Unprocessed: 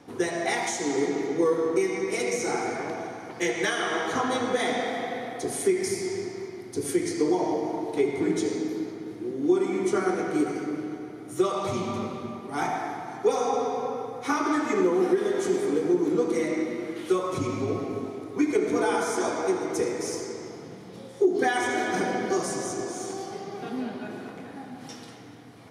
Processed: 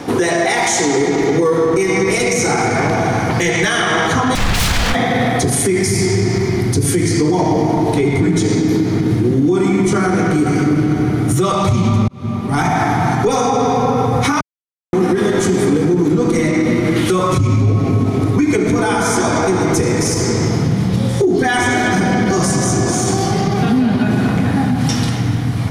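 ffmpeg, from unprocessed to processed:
ffmpeg -i in.wav -filter_complex "[0:a]asettb=1/sr,asplit=3[link_01][link_02][link_03];[link_01]atrim=end=4.354[link_04];[link_02]atrim=start=4.35:end=4.95,asetpts=PTS-STARTPTS,afade=type=in:duration=0.004:curve=qsin,afade=type=out:start_time=0.596:duration=0.004:curve=qsin,aeval=exprs='0.0299*(abs(mod(val(0)/0.0299+3,4)-2)-1)':channel_layout=same[link_05];[link_03]atrim=start=4.946[link_06];[link_04][link_05]acrossfade=duration=0.004:curve1=hsin:curve2=qsin[link_07];[link_07][link_06]acrossfade=duration=0.004:curve1=qsin:curve2=hsin,asplit=4[link_08][link_09][link_10][link_11];[link_08]atrim=end=12.08,asetpts=PTS-STARTPTS,afade=type=out:start_time=12.076:duration=0.004:curve=hsin[link_12];[link_09]atrim=start=12.08:end=14.41,asetpts=PTS-STARTPTS,afade=type=in:duration=0.99,afade=type=out:start_time=2.326:duration=0.004:curve=hsin[link_13];[link_10]atrim=start=14.41:end=14.93,asetpts=PTS-STARTPTS,volume=0[link_14];[link_11]atrim=start=14.93,asetpts=PTS-STARTPTS,afade=type=in:duration=0.004:curve=hsin[link_15];[link_12][link_13][link_14][link_15]concat=n=4:v=0:a=1,asubboost=boost=9.5:cutoff=130,acompressor=threshold=-34dB:ratio=2.5,alimiter=level_in=29dB:limit=-1dB:release=50:level=0:latency=1,volume=-5.5dB" out.wav

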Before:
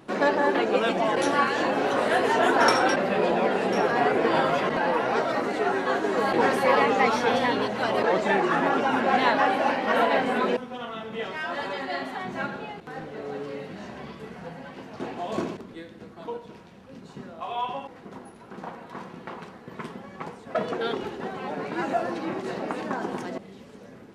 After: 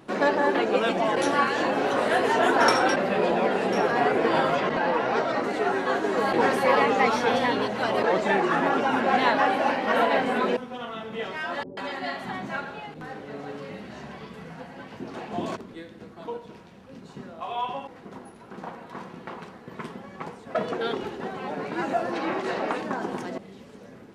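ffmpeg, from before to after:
ffmpeg -i in.wav -filter_complex "[0:a]asettb=1/sr,asplit=3[link_01][link_02][link_03];[link_01]atrim=end=4.554[link_04];[link_02]atrim=start=4.55:end=5.44,asetpts=PTS-STARTPTS,afade=type=in:duration=0.004:curve=qsin,afade=type=out:start_time=0.886:duration=0.004:curve=qsin,lowpass=7200[link_05];[link_03]atrim=start=5.436[link_06];[link_04][link_05]acrossfade=duration=0.004:curve1=hsin:curve2=qsin[link_07];[link_07][link_06]acrossfade=duration=0.004:curve1=qsin:curve2=hsin,asettb=1/sr,asplit=3[link_08][link_09][link_10];[link_08]atrim=end=11.634[link_11];[link_09]atrim=start=11.63:end=15.56,asetpts=PTS-STARTPTS,afade=type=in:duration=0.004:curve=qsin,afade=type=out:start_time=3.926:duration=0.004:curve=qsin,acrossover=split=430[link_12][link_13];[link_13]adelay=140[link_14];[link_12][link_14]amix=inputs=2:normalize=0,atrim=end_sample=173313[link_15];[link_10]atrim=start=15.556[link_16];[link_11][link_15]acrossfade=duration=0.004:curve1=hsin:curve2=qsin[link_17];[link_17][link_16]acrossfade=duration=0.004:curve1=qsin:curve2=hsin,asettb=1/sr,asplit=3[link_18][link_19][link_20];[link_18]atrim=end=22.134[link_21];[link_19]atrim=start=22.13:end=22.78,asetpts=PTS-STARTPTS,afade=type=in:duration=0.004:curve=qsin,afade=type=out:start_time=0.646:duration=0.004:curve=qsin,asplit=2[link_22][link_23];[link_23]highpass=frequency=720:poles=1,volume=13dB,asoftclip=type=tanh:threshold=-13.5dB[link_24];[link_22][link_24]amix=inputs=2:normalize=0,lowpass=frequency=3400:poles=1,volume=-6dB[link_25];[link_20]atrim=start=22.776[link_26];[link_21][link_25]acrossfade=duration=0.004:curve1=hsin:curve2=qsin[link_27];[link_27][link_26]acrossfade=duration=0.004:curve1=qsin:curve2=hsin" out.wav

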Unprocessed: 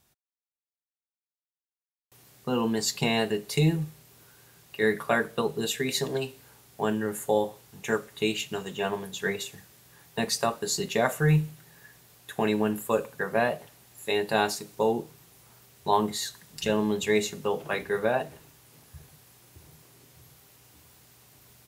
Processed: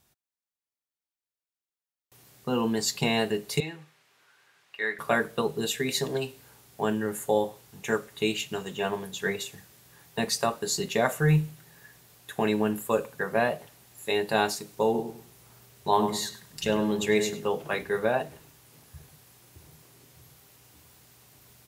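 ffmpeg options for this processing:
ffmpeg -i in.wav -filter_complex "[0:a]asettb=1/sr,asplit=3[link_01][link_02][link_03];[link_01]atrim=end=3.604[link_04];[link_02]atrim=start=3.6:end=4.99,asetpts=PTS-STARTPTS,afade=type=in:duration=0.004:curve=qsin,afade=type=out:start_time=1.386:duration=0.004:curve=qsin,bandpass=frequency=1800:width_type=q:width=0.85[link_05];[link_03]atrim=start=4.986[link_06];[link_04][link_05]acrossfade=duration=0.004:curve1=hsin:curve2=qsin[link_07];[link_07][link_06]acrossfade=duration=0.004:curve1=qsin:curve2=hsin,asettb=1/sr,asplit=3[link_08][link_09][link_10];[link_08]atrim=end=14.844[link_11];[link_09]atrim=start=14.84:end=17.45,asetpts=PTS-STARTPTS,afade=type=in:duration=0.004:curve=qsin,afade=type=out:start_time=2.606:duration=0.004:curve=qsin,asplit=2[link_12][link_13];[link_13]adelay=100,lowpass=frequency=2000:poles=1,volume=-7.5dB,asplit=2[link_14][link_15];[link_15]adelay=100,lowpass=frequency=2000:poles=1,volume=0.28,asplit=2[link_16][link_17];[link_17]adelay=100,lowpass=frequency=2000:poles=1,volume=0.28[link_18];[link_12][link_14][link_16][link_18]amix=inputs=4:normalize=0,atrim=end_sample=115101[link_19];[link_10]atrim=start=17.446[link_20];[link_11][link_19]acrossfade=duration=0.004:curve1=hsin:curve2=qsin[link_21];[link_21][link_20]acrossfade=duration=0.004:curve1=qsin:curve2=hsin" out.wav

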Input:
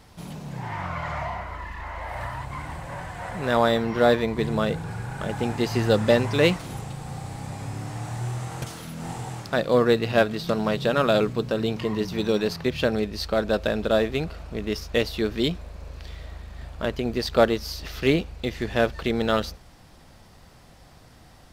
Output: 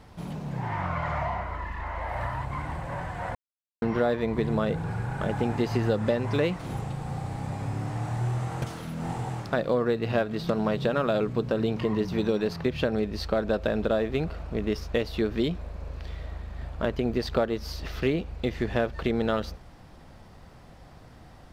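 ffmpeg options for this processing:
ffmpeg -i in.wav -filter_complex "[0:a]asplit=3[link_01][link_02][link_03];[link_01]atrim=end=3.35,asetpts=PTS-STARTPTS,afade=type=out:start_time=3.346:duration=0.004:curve=hsin[link_04];[link_02]atrim=start=3.35:end=3.82,asetpts=PTS-STARTPTS,volume=0[link_05];[link_03]atrim=start=3.82,asetpts=PTS-STARTPTS,afade=type=in:duration=0.004:curve=hsin[link_06];[link_04][link_05][link_06]concat=n=3:v=0:a=1,acompressor=threshold=-23dB:ratio=6,highshelf=frequency=3000:gain=-10.5,volume=2dB" out.wav

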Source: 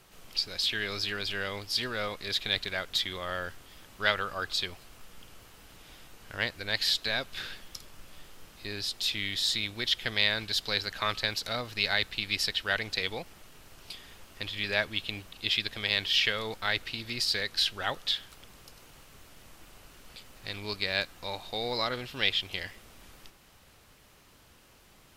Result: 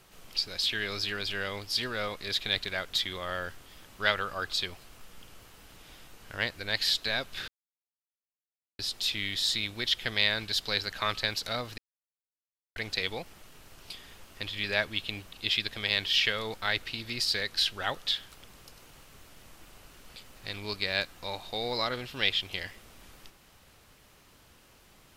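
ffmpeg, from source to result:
ffmpeg -i in.wav -filter_complex "[0:a]asplit=5[link_01][link_02][link_03][link_04][link_05];[link_01]atrim=end=7.48,asetpts=PTS-STARTPTS,afade=type=out:start_time=7.476:duration=0.004:curve=hsin[link_06];[link_02]atrim=start=7.48:end=8.79,asetpts=PTS-STARTPTS,volume=0[link_07];[link_03]atrim=start=8.79:end=11.78,asetpts=PTS-STARTPTS,afade=type=in:duration=0.004:curve=hsin,afade=type=out:start_time=2.986:duration=0.004:curve=hsin[link_08];[link_04]atrim=start=11.78:end=12.76,asetpts=PTS-STARTPTS,volume=0[link_09];[link_05]atrim=start=12.76,asetpts=PTS-STARTPTS,afade=type=in:duration=0.004:curve=hsin[link_10];[link_06][link_07][link_08][link_09][link_10]concat=n=5:v=0:a=1" out.wav

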